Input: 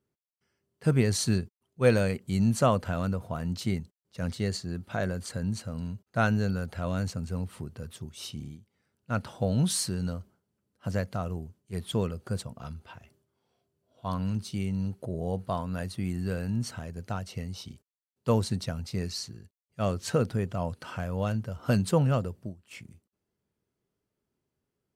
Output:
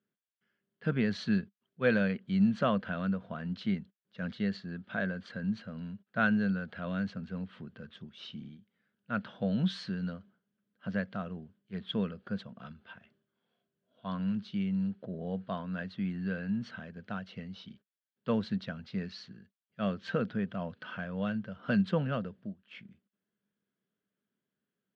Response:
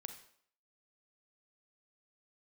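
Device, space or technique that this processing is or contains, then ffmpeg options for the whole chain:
kitchen radio: -af "highpass=180,equalizer=f=200:t=q:w=4:g=10,equalizer=f=360:t=q:w=4:g=-4,equalizer=f=860:t=q:w=4:g=-6,equalizer=f=1.6k:t=q:w=4:g=9,equalizer=f=3.3k:t=q:w=4:g=6,lowpass=f=3.8k:w=0.5412,lowpass=f=3.8k:w=1.3066,volume=-5dB"

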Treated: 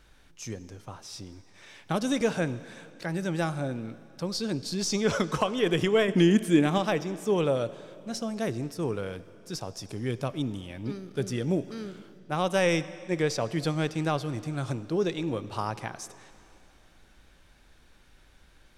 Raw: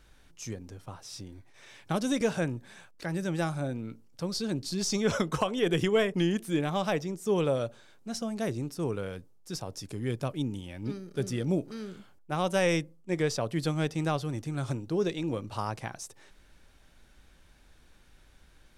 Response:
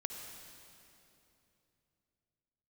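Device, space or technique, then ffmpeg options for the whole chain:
filtered reverb send: -filter_complex "[0:a]asettb=1/sr,asplit=3[a][b][c];[a]atrim=end=6.084[d];[b]atrim=start=6.08:end=6.78,asetpts=PTS-STARTPTS,afade=t=in:d=0.004:c=qsin,afade=t=out:st=0.696:d=0.004:c=qsin,equalizer=f=250:t=o:w=1:g=10,equalizer=f=2k:t=o:w=1:g=4,equalizer=f=8k:t=o:w=1:g=7[e];[c]atrim=start=6.776[f];[d][e]acrossfade=d=0.004:c1=hsin:c2=qsin[g];[g][f]acrossfade=d=0.004:c1=qsin:c2=hsin,asplit=2[h][i];[i]highpass=f=320:p=1,lowpass=7.4k[j];[1:a]atrim=start_sample=2205[k];[j][k]afir=irnorm=-1:irlink=0,volume=-8dB[l];[h][l]amix=inputs=2:normalize=0"

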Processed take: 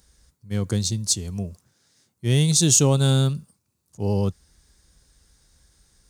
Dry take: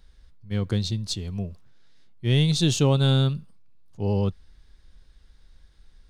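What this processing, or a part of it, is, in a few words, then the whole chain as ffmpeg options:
budget condenser microphone: -af "highpass=63,highshelf=f=5k:t=q:w=1.5:g=12,volume=1.5dB"

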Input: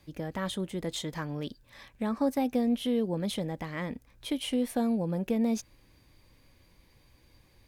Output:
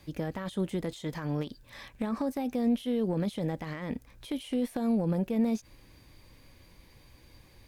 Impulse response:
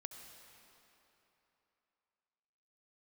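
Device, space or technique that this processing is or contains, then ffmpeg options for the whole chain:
de-esser from a sidechain: -filter_complex "[0:a]asplit=2[a][b];[b]highpass=f=5.8k:p=1,apad=whole_len=338687[c];[a][c]sidechaincompress=threshold=-52dB:ratio=8:attack=1:release=46,volume=5dB"

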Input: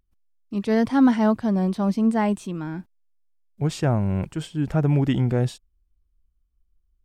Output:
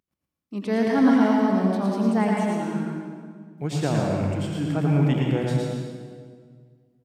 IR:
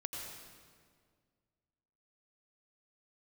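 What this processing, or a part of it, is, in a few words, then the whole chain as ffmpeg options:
PA in a hall: -filter_complex "[0:a]highpass=160,equalizer=f=2.2k:t=o:w=0.28:g=3,aecho=1:1:112:0.596[a];[1:a]atrim=start_sample=2205[b];[a][b]afir=irnorm=-1:irlink=0,bandreject=f=60:t=h:w=6,bandreject=f=120:t=h:w=6"

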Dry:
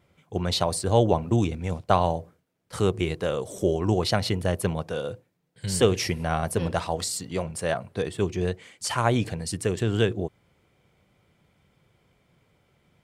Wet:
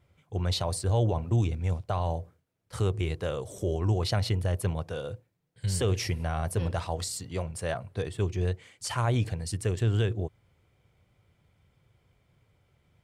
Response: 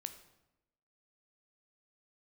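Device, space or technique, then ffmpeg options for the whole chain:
car stereo with a boomy subwoofer: -af "lowshelf=f=140:t=q:w=1.5:g=6.5,alimiter=limit=-13dB:level=0:latency=1:release=15,volume=-5dB"

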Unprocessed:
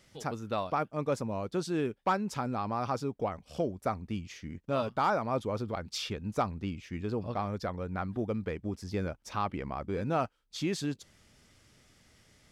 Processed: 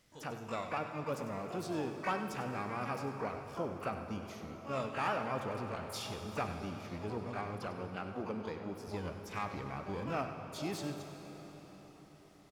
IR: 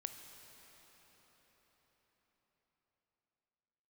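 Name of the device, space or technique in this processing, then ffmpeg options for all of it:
shimmer-style reverb: -filter_complex "[0:a]asettb=1/sr,asplit=3[a][b][c];[a]atrim=end=7.664[d];[b]atrim=start=7.66:end=8.88,asetpts=PTS-STARTPTS,afade=t=in:d=0.004:c=qsin,afade=t=out:st=1.216:d=0.004:c=qsin,highpass=140[e];[c]atrim=start=8.876[f];[d][e]acrossfade=d=0.004:c1=hsin:c2=qsin[g];[g][f]acrossfade=d=0.004:c1=qsin:c2=hsin,asplit=2[h][i];[i]asetrate=88200,aresample=44100,atempo=0.5,volume=-7dB[j];[h][j]amix=inputs=2:normalize=0[k];[1:a]atrim=start_sample=2205[l];[k][l]afir=irnorm=-1:irlink=0,aecho=1:1:98:0.237,volume=-4dB"

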